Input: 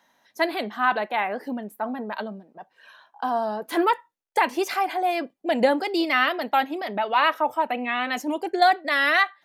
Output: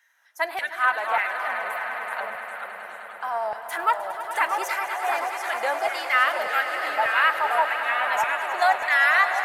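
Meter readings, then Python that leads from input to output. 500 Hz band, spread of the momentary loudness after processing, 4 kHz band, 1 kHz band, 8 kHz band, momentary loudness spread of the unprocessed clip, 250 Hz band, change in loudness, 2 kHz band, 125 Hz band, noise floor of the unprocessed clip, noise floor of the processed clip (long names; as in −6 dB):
−4.0 dB, 11 LU, −3.0 dB, 0.0 dB, +3.5 dB, 11 LU, −21.0 dB, +0.5 dB, +3.5 dB, can't be measured, −69 dBFS, −41 dBFS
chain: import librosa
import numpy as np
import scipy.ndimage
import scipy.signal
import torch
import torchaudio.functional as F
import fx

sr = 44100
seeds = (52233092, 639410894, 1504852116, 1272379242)

p1 = fx.echo_pitch(x, sr, ms=170, semitones=-2, count=3, db_per_echo=-6.0)
p2 = fx.filter_lfo_highpass(p1, sr, shape='saw_down', hz=1.7, low_hz=820.0, high_hz=1800.0, q=2.3)
p3 = fx.graphic_eq_10(p2, sr, hz=(125, 250, 500, 1000, 4000, 8000), db=(4, -4, 3, -6, -9, 4))
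y = p3 + fx.echo_swell(p3, sr, ms=103, loudest=5, wet_db=-13.5, dry=0)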